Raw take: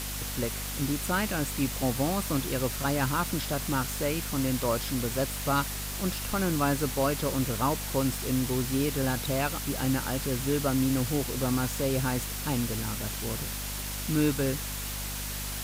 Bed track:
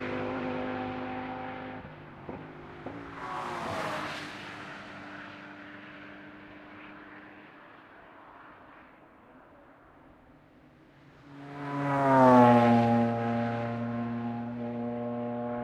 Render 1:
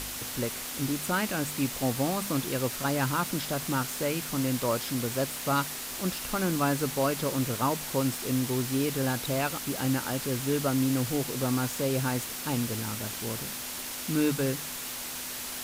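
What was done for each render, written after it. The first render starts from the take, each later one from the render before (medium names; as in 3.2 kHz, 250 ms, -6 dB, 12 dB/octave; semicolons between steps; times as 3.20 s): de-hum 50 Hz, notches 4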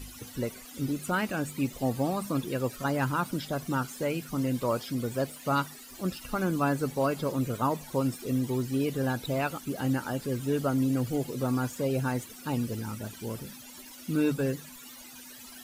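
noise reduction 17 dB, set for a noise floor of -37 dBFS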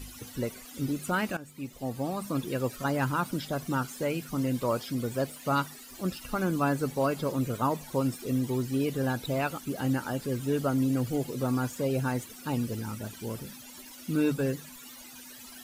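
1.37–2.51 s: fade in, from -15.5 dB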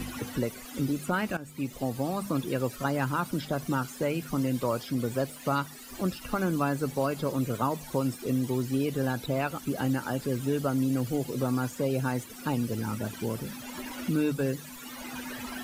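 three bands compressed up and down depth 70%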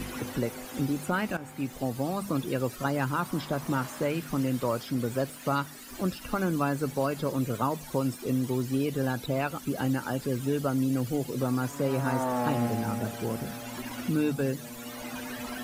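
add bed track -10.5 dB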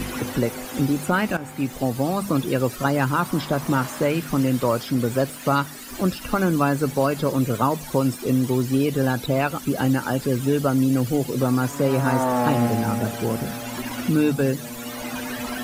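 trim +7.5 dB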